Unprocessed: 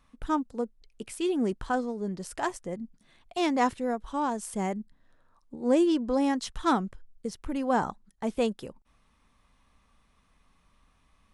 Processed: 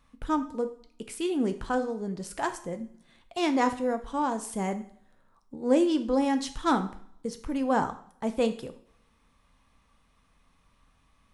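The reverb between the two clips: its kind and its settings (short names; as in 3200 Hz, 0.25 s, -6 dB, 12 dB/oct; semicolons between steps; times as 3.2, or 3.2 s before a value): two-slope reverb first 0.52 s, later 1.6 s, from -27 dB, DRR 8 dB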